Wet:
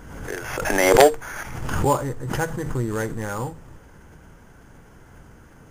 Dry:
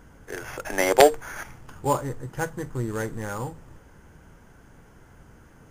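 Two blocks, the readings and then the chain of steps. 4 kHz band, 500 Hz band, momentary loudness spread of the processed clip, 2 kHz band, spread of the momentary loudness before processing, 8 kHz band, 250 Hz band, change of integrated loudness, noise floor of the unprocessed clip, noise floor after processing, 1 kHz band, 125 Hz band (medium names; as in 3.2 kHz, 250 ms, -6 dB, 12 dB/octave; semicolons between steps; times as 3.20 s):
+2.5 dB, +3.0 dB, 17 LU, +4.5 dB, 20 LU, +3.5 dB, +5.0 dB, +3.0 dB, -53 dBFS, -49 dBFS, +3.0 dB, +5.5 dB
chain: saturation -5 dBFS, distortion -17 dB; swell ahead of each attack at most 43 dB/s; trim +3 dB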